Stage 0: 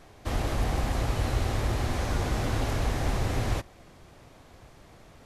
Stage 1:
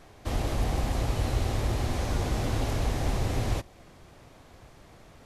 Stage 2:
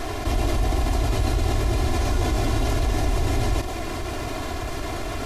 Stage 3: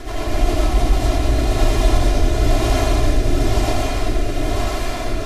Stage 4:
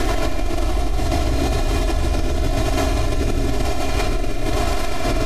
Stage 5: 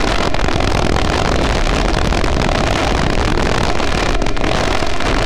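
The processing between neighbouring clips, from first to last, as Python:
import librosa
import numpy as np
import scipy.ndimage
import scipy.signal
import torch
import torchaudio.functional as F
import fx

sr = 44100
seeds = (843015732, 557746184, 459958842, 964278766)

y1 = fx.dynamic_eq(x, sr, hz=1500.0, q=1.2, threshold_db=-50.0, ratio=4.0, max_db=-4)
y2 = y1 + 0.74 * np.pad(y1, (int(2.9 * sr / 1000.0), 0))[:len(y1)]
y2 = fx.env_flatten(y2, sr, amount_pct=70)
y3 = fx.rotary_switch(y2, sr, hz=7.5, then_hz=1.0, switch_at_s=0.28)
y3 = y3 + 10.0 ** (-5.0 / 20.0) * np.pad(y3, (int(1026 * sr / 1000.0), 0))[:len(y3)]
y3 = fx.rev_freeverb(y3, sr, rt60_s=0.77, hf_ratio=0.85, predelay_ms=45, drr_db=-6.0)
y4 = fx.comb_fb(y3, sr, f0_hz=68.0, decay_s=1.8, harmonics='all', damping=0.0, mix_pct=70)
y4 = y4 + 10.0 ** (-6.5 / 20.0) * np.pad(y4, (int(117 * sr / 1000.0), 0))[:len(y4)]
y4 = fx.env_flatten(y4, sr, amount_pct=100)
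y5 = (np.mod(10.0 ** (12.5 / 20.0) * y4 + 1.0, 2.0) - 1.0) / 10.0 ** (12.5 / 20.0)
y5 = fx.air_absorb(y5, sr, metres=110.0)
y5 = fx.doppler_dist(y5, sr, depth_ms=0.17)
y5 = y5 * librosa.db_to_amplitude(5.0)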